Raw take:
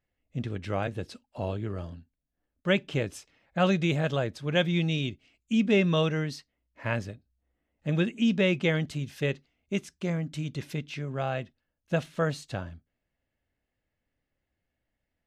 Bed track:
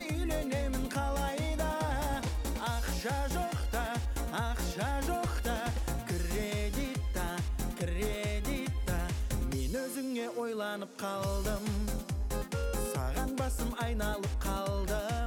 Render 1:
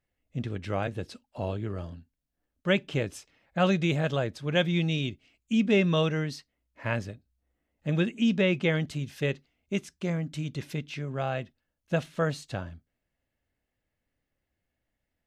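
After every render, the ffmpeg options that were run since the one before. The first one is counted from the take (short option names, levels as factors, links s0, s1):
-filter_complex "[0:a]asettb=1/sr,asplit=3[s0][s1][s2];[s0]atrim=end=8.424[s3];[s1]atrim=start=8.42:end=8.87,asetpts=PTS-STARTPTS,afade=t=in:d=0.004:c=qsin,afade=t=out:st=0.446:d=0.004:c=qsin,acrossover=split=4400[s4][s5];[s5]acompressor=threshold=0.00316:ratio=4:attack=1:release=60[s6];[s4][s6]amix=inputs=2:normalize=0[s7];[s2]atrim=start=8.866[s8];[s3][s7]acrossfade=d=0.004:c1=hsin:c2=qsin[s9];[s9][s8]acrossfade=d=0.004:c1=qsin:c2=hsin"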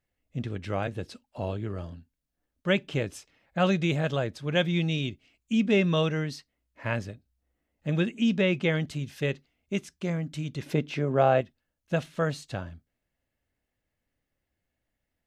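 -filter_complex "[0:a]asettb=1/sr,asplit=3[s0][s1][s2];[s0]atrim=end=10.664[s3];[s1]atrim=start=10.66:end=11.41,asetpts=PTS-STARTPTS,afade=t=in:d=0.004:c=qsin,afade=t=out:st=0.746:d=0.004:c=qsin,equalizer=f=500:w=0.39:g=11.5[s4];[s2]atrim=start=11.406[s5];[s3][s4]acrossfade=d=0.004:c1=hsin:c2=qsin[s6];[s6][s5]acrossfade=d=0.004:c1=qsin:c2=hsin"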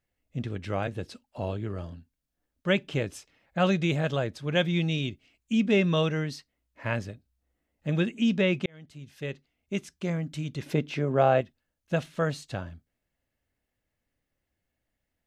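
-filter_complex "[0:a]asplit=2[s0][s1];[s0]atrim=end=8.66,asetpts=PTS-STARTPTS,afade=t=out:st=8.656:d=0.004:c=hsin[s2];[s1]atrim=start=8.66,asetpts=PTS-STARTPTS,afade=t=in:d=1.25[s3];[s2][s3]concat=n=2:v=0:a=1"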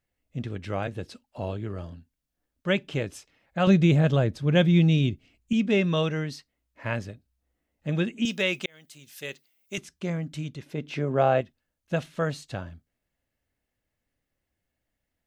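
-filter_complex "[0:a]asettb=1/sr,asplit=3[s0][s1][s2];[s0]atrim=end=3.674[s3];[s1]atrim=start=3.67:end=5.53,asetpts=PTS-STARTPTS,afade=t=in:d=0.004:c=qsin,afade=t=out:st=1.856:d=0.004:c=qsin,lowshelf=f=370:g=10[s4];[s2]atrim=start=5.526[s5];[s3][s4]acrossfade=d=0.004:c1=hsin:c2=qsin[s6];[s6][s5]acrossfade=d=0.004:c1=qsin:c2=hsin,asettb=1/sr,asplit=3[s7][s8][s9];[s7]atrim=end=8.254[s10];[s8]atrim=start=8.25:end=9.78,asetpts=PTS-STARTPTS,afade=t=in:d=0.004:c=qsin,afade=t=out:st=1.526:d=0.004:c=qsin,aemphasis=mode=production:type=riaa[s11];[s9]atrim=start=9.776[s12];[s10][s11]acrossfade=d=0.004:c1=hsin:c2=qsin[s13];[s13][s12]acrossfade=d=0.004:c1=qsin:c2=hsin,asplit=3[s14][s15][s16];[s14]atrim=end=10.68,asetpts=PTS-STARTPTS,afade=t=out:st=10.44:d=0.24:silence=0.316228[s17];[s15]atrim=start=10.68:end=10.71,asetpts=PTS-STARTPTS,volume=0.316[s18];[s16]atrim=start=10.71,asetpts=PTS-STARTPTS,afade=t=in:d=0.24:silence=0.316228[s19];[s17][s18][s19]concat=n=3:v=0:a=1"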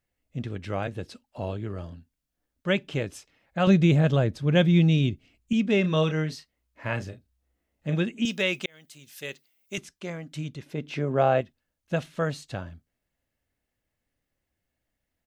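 -filter_complex "[0:a]asplit=3[s0][s1][s2];[s0]afade=t=out:st=5.83:d=0.02[s3];[s1]asplit=2[s4][s5];[s5]adelay=32,volume=0.398[s6];[s4][s6]amix=inputs=2:normalize=0,afade=t=in:st=5.83:d=0.02,afade=t=out:st=7.94:d=0.02[s7];[s2]afade=t=in:st=7.94:d=0.02[s8];[s3][s7][s8]amix=inputs=3:normalize=0,asettb=1/sr,asplit=3[s9][s10][s11];[s9]atrim=end=9.914[s12];[s10]atrim=start=9.91:end=10.36,asetpts=PTS-STARTPTS,afade=t=in:d=0.004:c=qsin,afade=t=out:st=0.446:d=0.004:c=qsin,equalizer=f=78:t=o:w=2.9:g=-13[s13];[s11]atrim=start=10.356[s14];[s12][s13]acrossfade=d=0.004:c1=hsin:c2=qsin[s15];[s15][s14]acrossfade=d=0.004:c1=qsin:c2=hsin"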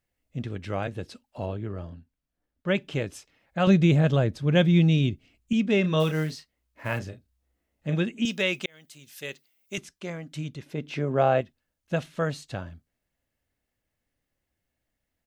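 -filter_complex "[0:a]asettb=1/sr,asplit=3[s0][s1][s2];[s0]atrim=end=1.464[s3];[s1]atrim=start=1.46:end=2.75,asetpts=PTS-STARTPTS,afade=t=in:d=0.004:c=qsin,afade=t=out:st=1.286:d=0.004:c=qsin,highshelf=f=3800:g=-10.5[s4];[s2]atrim=start=2.746[s5];[s3][s4]acrossfade=d=0.004:c1=hsin:c2=qsin[s6];[s6][s5]acrossfade=d=0.004:c1=qsin:c2=hsin,asplit=3[s7][s8][s9];[s7]afade=t=out:st=5.99:d=0.02[s10];[s8]acrusher=bits=6:mode=log:mix=0:aa=0.000001,afade=t=in:st=5.99:d=0.02,afade=t=out:st=6.98:d=0.02[s11];[s9]afade=t=in:st=6.98:d=0.02[s12];[s10][s11][s12]amix=inputs=3:normalize=0"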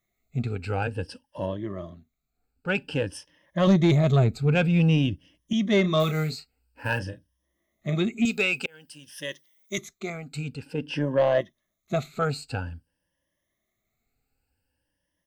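-af "afftfilt=real='re*pow(10,16/40*sin(2*PI*(1.2*log(max(b,1)*sr/1024/100)/log(2)-(0.51)*(pts-256)/sr)))':imag='im*pow(10,16/40*sin(2*PI*(1.2*log(max(b,1)*sr/1024/100)/log(2)-(0.51)*(pts-256)/sr)))':win_size=1024:overlap=0.75,asoftclip=type=tanh:threshold=0.237"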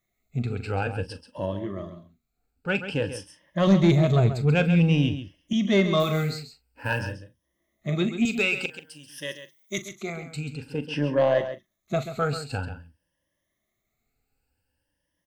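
-filter_complex "[0:a]asplit=2[s0][s1];[s1]adelay=41,volume=0.211[s2];[s0][s2]amix=inputs=2:normalize=0,aecho=1:1:135:0.299"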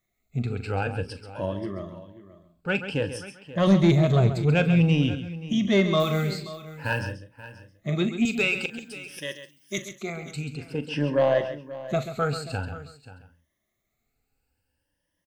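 -af "aecho=1:1:532:0.158"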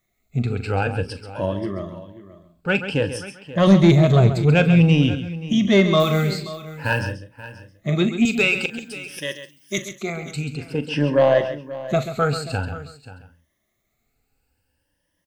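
-af "volume=1.88"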